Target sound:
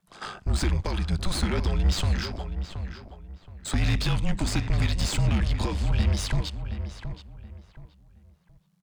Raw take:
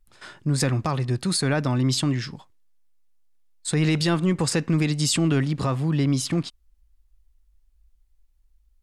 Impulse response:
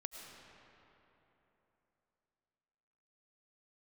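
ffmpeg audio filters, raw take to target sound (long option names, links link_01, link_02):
-filter_complex "[0:a]highshelf=frequency=3100:gain=9,acrossover=split=420|2200[link_01][link_02][link_03];[link_02]acompressor=threshold=-43dB:ratio=6[link_04];[link_03]aeval=exprs='val(0)*sin(2*PI*49*n/s)':channel_layout=same[link_05];[link_01][link_04][link_05]amix=inputs=3:normalize=0,asplit=2[link_06][link_07];[link_07]highpass=frequency=720:poles=1,volume=25dB,asoftclip=type=tanh:threshold=-7dB[link_08];[link_06][link_08]amix=inputs=2:normalize=0,lowpass=frequency=1300:poles=1,volume=-6dB,afreqshift=-200,asplit=2[link_09][link_10];[link_10]adelay=723,lowpass=frequency=2400:poles=1,volume=-9dB,asplit=2[link_11][link_12];[link_12]adelay=723,lowpass=frequency=2400:poles=1,volume=0.28,asplit=2[link_13][link_14];[link_14]adelay=723,lowpass=frequency=2400:poles=1,volume=0.28[link_15];[link_09][link_11][link_13][link_15]amix=inputs=4:normalize=0,volume=-5.5dB"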